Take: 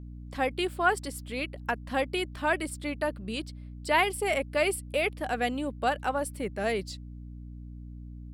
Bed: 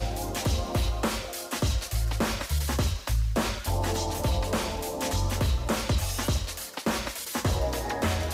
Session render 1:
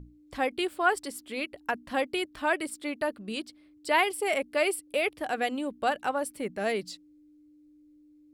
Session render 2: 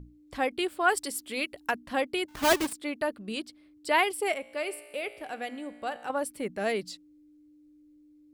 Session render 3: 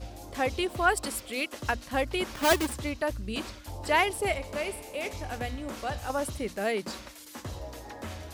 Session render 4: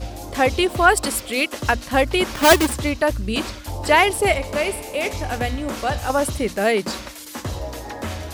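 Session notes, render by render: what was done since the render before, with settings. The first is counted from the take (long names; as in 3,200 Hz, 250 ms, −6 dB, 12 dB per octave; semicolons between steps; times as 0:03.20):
mains-hum notches 60/120/180/240 Hz
0:00.88–0:01.76: high-shelf EQ 3,200 Hz +7.5 dB; 0:02.28–0:02.73: each half-wave held at its own peak; 0:04.32–0:06.10: tuned comb filter 59 Hz, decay 1.8 s
mix in bed −12.5 dB
level +10.5 dB; brickwall limiter −3 dBFS, peak gain reduction 2.5 dB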